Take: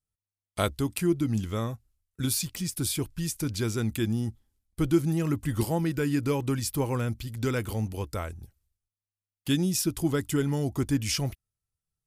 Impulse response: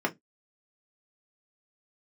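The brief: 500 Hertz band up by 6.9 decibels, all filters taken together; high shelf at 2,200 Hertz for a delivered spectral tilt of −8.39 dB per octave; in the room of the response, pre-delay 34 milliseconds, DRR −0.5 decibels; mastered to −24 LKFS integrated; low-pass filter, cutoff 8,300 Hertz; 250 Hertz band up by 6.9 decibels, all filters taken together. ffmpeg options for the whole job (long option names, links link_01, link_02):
-filter_complex "[0:a]lowpass=8300,equalizer=frequency=250:width_type=o:gain=7,equalizer=frequency=500:width_type=o:gain=6.5,highshelf=frequency=2200:gain=-4.5,asplit=2[link_01][link_02];[1:a]atrim=start_sample=2205,adelay=34[link_03];[link_02][link_03]afir=irnorm=-1:irlink=0,volume=-9dB[link_04];[link_01][link_04]amix=inputs=2:normalize=0,volume=-5dB"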